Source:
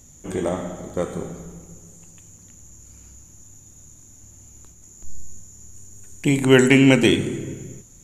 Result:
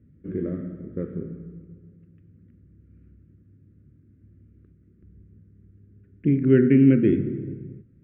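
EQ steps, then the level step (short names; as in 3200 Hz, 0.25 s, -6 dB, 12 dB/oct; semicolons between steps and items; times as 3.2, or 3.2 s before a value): HPF 79 Hz; Butterworth band-stop 860 Hz, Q 0.52; inverse Chebyshev low-pass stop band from 7600 Hz, stop band 80 dB; 0.0 dB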